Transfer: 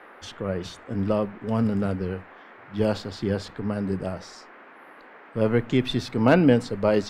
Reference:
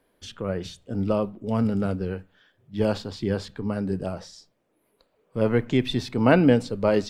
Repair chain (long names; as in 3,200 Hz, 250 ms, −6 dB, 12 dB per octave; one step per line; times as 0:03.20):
clipped peaks rebuilt −5.5 dBFS
noise reduction from a noise print 20 dB